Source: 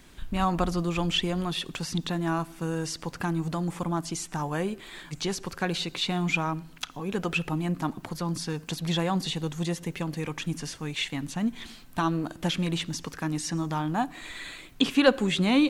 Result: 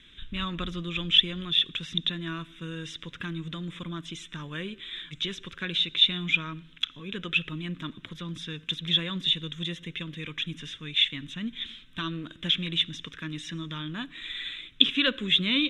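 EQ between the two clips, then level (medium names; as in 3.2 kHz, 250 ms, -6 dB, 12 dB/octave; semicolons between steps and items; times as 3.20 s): resonant low-pass 3.6 kHz, resonance Q 12; treble shelf 2.8 kHz +9.5 dB; static phaser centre 1.9 kHz, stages 4; -5.5 dB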